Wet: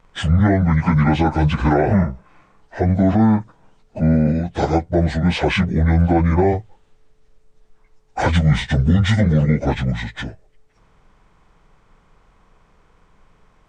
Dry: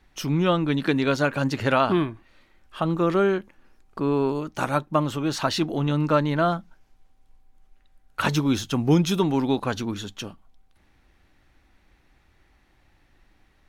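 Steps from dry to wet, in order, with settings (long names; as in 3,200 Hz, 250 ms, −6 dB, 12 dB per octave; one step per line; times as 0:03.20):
phase-vocoder pitch shift without resampling −10 semitones
boost into a limiter +14.5 dB
level −5.5 dB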